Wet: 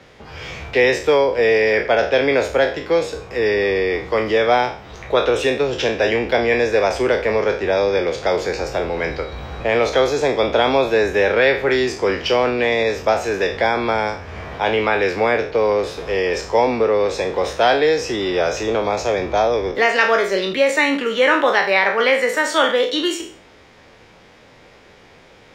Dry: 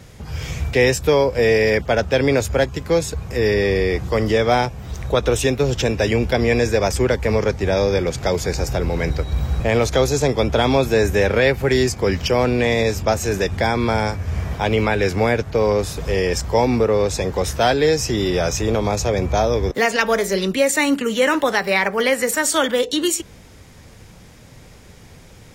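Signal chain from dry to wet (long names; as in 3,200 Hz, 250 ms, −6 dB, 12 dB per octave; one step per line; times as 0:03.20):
peak hold with a decay on every bin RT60 0.44 s
three-way crossover with the lows and the highs turned down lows −15 dB, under 290 Hz, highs −20 dB, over 4,600 Hz
level +1.5 dB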